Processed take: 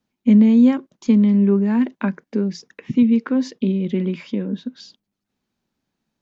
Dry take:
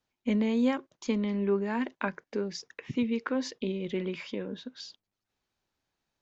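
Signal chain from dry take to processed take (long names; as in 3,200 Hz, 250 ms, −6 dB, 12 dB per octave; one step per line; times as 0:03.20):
parametric band 210 Hz +14 dB 1.2 octaves
level +2 dB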